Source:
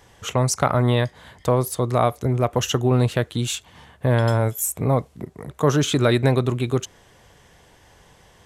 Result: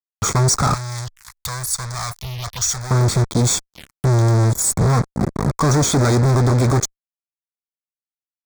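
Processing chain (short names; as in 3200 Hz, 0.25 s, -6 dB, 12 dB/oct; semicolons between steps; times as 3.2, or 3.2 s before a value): low shelf 120 Hz -2.5 dB; comb 0.9 ms, depth 59%; fuzz box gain 40 dB, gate -38 dBFS; 0.74–2.91 passive tone stack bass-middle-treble 10-0-10; envelope phaser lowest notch 220 Hz, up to 2900 Hz, full sweep at -21.5 dBFS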